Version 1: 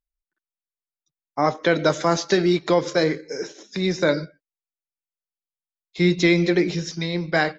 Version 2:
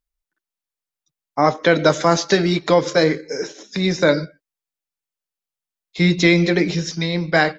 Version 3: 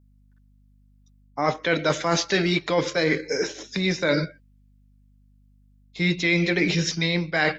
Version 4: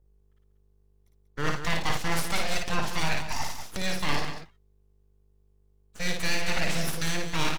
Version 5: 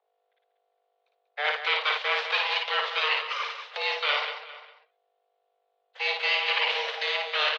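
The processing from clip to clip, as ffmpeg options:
ffmpeg -i in.wav -af "bandreject=frequency=360:width=12,volume=4.5dB" out.wav
ffmpeg -i in.wav -af "adynamicequalizer=threshold=0.02:dfrequency=2500:dqfactor=1.1:tfrequency=2500:tqfactor=1.1:attack=5:release=100:ratio=0.375:range=4:mode=boostabove:tftype=bell,areverse,acompressor=threshold=-20dB:ratio=6,areverse,aeval=exprs='val(0)+0.00141*(sin(2*PI*50*n/s)+sin(2*PI*2*50*n/s)/2+sin(2*PI*3*50*n/s)/3+sin(2*PI*4*50*n/s)/4+sin(2*PI*5*50*n/s)/5)':channel_layout=same,volume=1dB" out.wav
ffmpeg -i in.wav -filter_complex "[0:a]acrossover=split=150[link_01][link_02];[link_02]aeval=exprs='abs(val(0))':channel_layout=same[link_03];[link_01][link_03]amix=inputs=2:normalize=0,aecho=1:1:55.39|189.5:0.631|0.355,volume=-4dB" out.wav
ffmpeg -i in.wav -filter_complex "[0:a]asplit=2[link_01][link_02];[link_02]adelay=402.3,volume=-17dB,highshelf=frequency=4000:gain=-9.05[link_03];[link_01][link_03]amix=inputs=2:normalize=0,highpass=frequency=180:width_type=q:width=0.5412,highpass=frequency=180:width_type=q:width=1.307,lowpass=frequency=3400:width_type=q:width=0.5176,lowpass=frequency=3400:width_type=q:width=0.7071,lowpass=frequency=3400:width_type=q:width=1.932,afreqshift=300,crystalizer=i=4.5:c=0" out.wav

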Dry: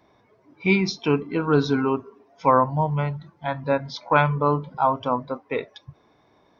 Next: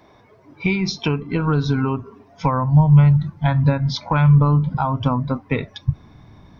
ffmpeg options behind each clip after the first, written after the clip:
ffmpeg -i in.wav -af "acompressor=threshold=-26dB:ratio=6,asubboost=boost=11.5:cutoff=140,volume=8.5dB" out.wav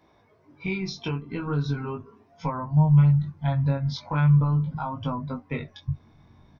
ffmpeg -i in.wav -filter_complex "[0:a]flanger=delay=18.5:depth=3.5:speed=0.41,asplit=2[link_01][link_02];[link_02]adelay=13,volume=-12dB[link_03];[link_01][link_03]amix=inputs=2:normalize=0,volume=-6.5dB" out.wav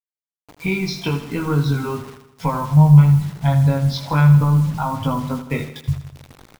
ffmpeg -i in.wav -filter_complex "[0:a]acrusher=bits=7:mix=0:aa=0.000001,asplit=2[link_01][link_02];[link_02]aecho=0:1:80|160|240|320|400|480:0.266|0.149|0.0834|0.0467|0.0262|0.0147[link_03];[link_01][link_03]amix=inputs=2:normalize=0,volume=7.5dB" out.wav

